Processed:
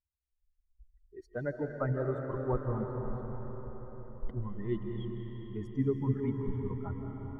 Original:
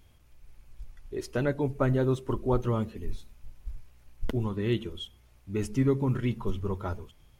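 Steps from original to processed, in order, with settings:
spectral dynamics exaggerated over time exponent 2
Savitzky-Golay smoothing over 41 samples
on a send: convolution reverb RT60 5.3 s, pre-delay 120 ms, DRR 2 dB
on the sum: level −3 dB

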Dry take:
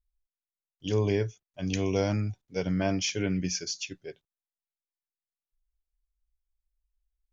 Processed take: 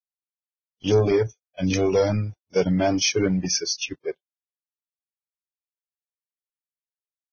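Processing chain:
leveller curve on the samples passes 2
dynamic equaliser 440 Hz, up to +6 dB, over −36 dBFS, Q 0.86
reverb reduction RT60 1.9 s
Ogg Vorbis 16 kbit/s 16,000 Hz

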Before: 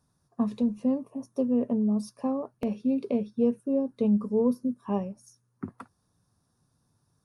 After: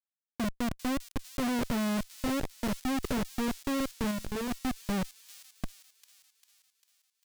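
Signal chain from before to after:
gate on every frequency bin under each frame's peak −30 dB strong
comparator with hysteresis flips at −28.5 dBFS
0:04.11–0:04.51: tuned comb filter 71 Hz, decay 1.6 s, mix 40%
on a send: delay with a high-pass on its return 398 ms, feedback 57%, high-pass 4,700 Hz, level −5 dB

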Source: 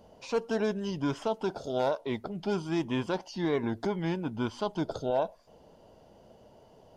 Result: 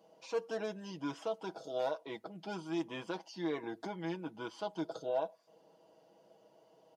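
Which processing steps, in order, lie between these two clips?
high-pass filter 250 Hz 12 dB per octave
comb filter 6.2 ms, depth 69%
level −8.5 dB

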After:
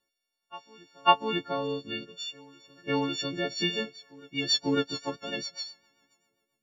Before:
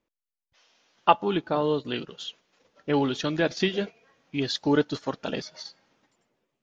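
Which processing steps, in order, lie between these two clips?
every partial snapped to a pitch grid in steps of 4 semitones
rotating-speaker cabinet horn 0.65 Hz, later 7.5 Hz, at 0:03.48
backwards echo 548 ms −23.5 dB
level −3.5 dB

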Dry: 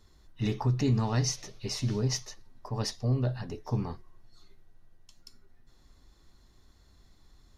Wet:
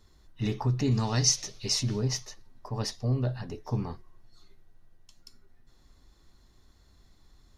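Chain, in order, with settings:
0:00.91–0:01.83: parametric band 6,200 Hz +9 dB 2.1 octaves

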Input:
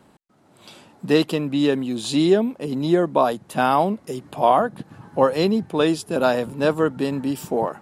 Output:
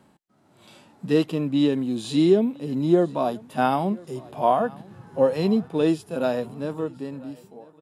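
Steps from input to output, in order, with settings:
fade-out on the ending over 1.99 s
repeating echo 994 ms, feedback 30%, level −23.5 dB
harmonic and percussive parts rebalanced percussive −14 dB

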